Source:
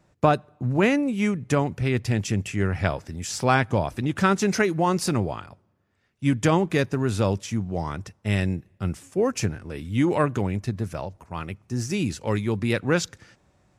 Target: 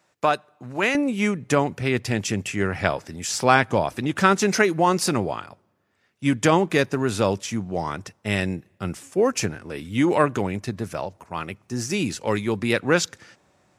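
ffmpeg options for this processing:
ffmpeg -i in.wav -af "asetnsamples=nb_out_samples=441:pad=0,asendcmd='0.95 highpass f 280',highpass=frequency=1100:poles=1,volume=4.5dB" out.wav

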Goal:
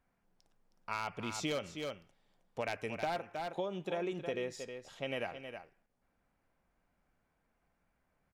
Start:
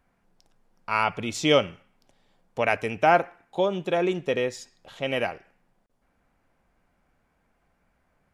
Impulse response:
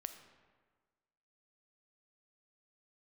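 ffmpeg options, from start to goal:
-af "aeval=exprs='0.237*(abs(mod(val(0)/0.237+3,4)-2)-1)':channel_layout=same,aecho=1:1:316:0.282,acompressor=threshold=-24dB:ratio=6,volume=-9dB"

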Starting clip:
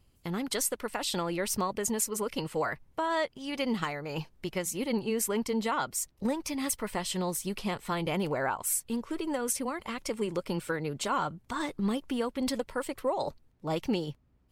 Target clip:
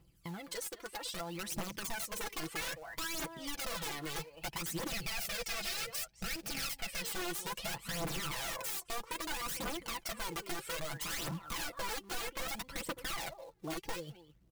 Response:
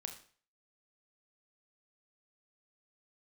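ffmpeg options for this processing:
-filter_complex "[0:a]highpass=45,asplit=2[link_01][link_02];[link_02]adelay=210,highpass=300,lowpass=3400,asoftclip=type=hard:threshold=-26dB,volume=-15dB[link_03];[link_01][link_03]amix=inputs=2:normalize=0,dynaudnorm=framelen=350:gausssize=11:maxgain=9.5dB,aeval=exprs='(mod(10*val(0)+1,2)-1)/10':channel_layout=same,aphaser=in_gain=1:out_gain=1:delay=2.9:decay=0.64:speed=0.62:type=triangular,aecho=1:1:6:0.68,acrusher=bits=4:mode=log:mix=0:aa=0.000001,acompressor=threshold=-40dB:ratio=2,asettb=1/sr,asplit=3[link_04][link_05][link_06];[link_04]atrim=end=4.914[link_07];[link_05]atrim=start=4.91:end=7.02,asetpts=PTS-STARTPTS,afade=type=in:duration=0.004:curve=qsin,afade=type=out:start_time=2.106:duration=0.004:curve=qsin,equalizer=frequency=315:width_type=o:width=0.33:gain=-11,equalizer=frequency=1000:width_type=o:width=0.33:gain=-11,equalizer=frequency=2500:width_type=o:width=0.33:gain=5,equalizer=frequency=5000:width_type=o:width=0.33:gain=5[link_08];[link_06]atrim=start=7.016[link_09];[link_07][link_08]acrossfade=duration=0.004:curve1=hsin:curve2=qsin[link_10];[link_10][link_09]acrossfade=duration=0.004:curve1=qsin:curve2=hsin,volume=-6dB"

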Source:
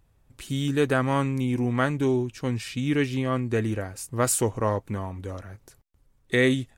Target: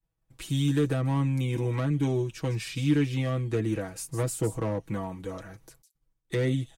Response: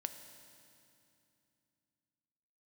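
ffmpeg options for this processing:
-filter_complex "[0:a]agate=range=-33dB:threshold=-51dB:ratio=3:detection=peak,aecho=1:1:6.2:0.84,acrossover=split=430[link_01][link_02];[link_02]acompressor=threshold=-31dB:ratio=6[link_03];[link_01][link_03]amix=inputs=2:normalize=0,acrossover=split=400|3400[link_04][link_05][link_06];[link_05]asoftclip=type=hard:threshold=-28.5dB[link_07];[link_06]aecho=1:1:156:0.355[link_08];[link_04][link_07][link_08]amix=inputs=3:normalize=0,volume=-2dB"

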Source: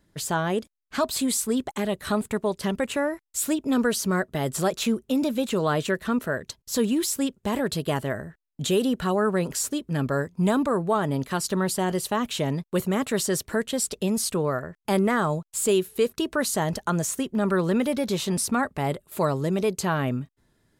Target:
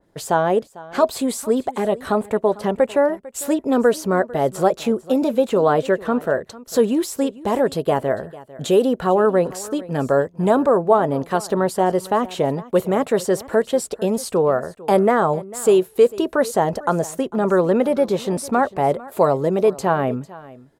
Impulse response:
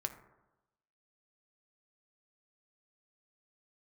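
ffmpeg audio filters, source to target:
-af "equalizer=frequency=610:width_type=o:width=1.7:gain=14.5,bandreject=frequency=610:width=12,aecho=1:1:449:0.106,adynamicequalizer=threshold=0.02:dfrequency=2400:dqfactor=0.7:tfrequency=2400:tqfactor=0.7:attack=5:release=100:ratio=0.375:range=2:mode=cutabove:tftype=highshelf,volume=-1.5dB"

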